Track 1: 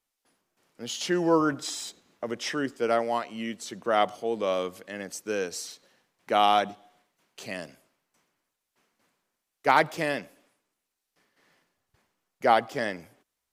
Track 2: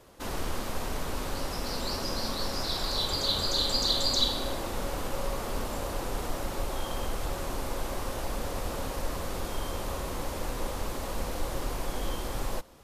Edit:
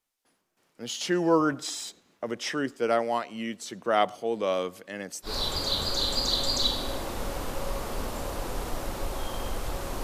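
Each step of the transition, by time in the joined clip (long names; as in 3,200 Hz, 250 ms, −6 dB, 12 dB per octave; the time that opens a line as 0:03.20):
track 1
0:05.28: continue with track 2 from 0:02.85, crossfade 0.12 s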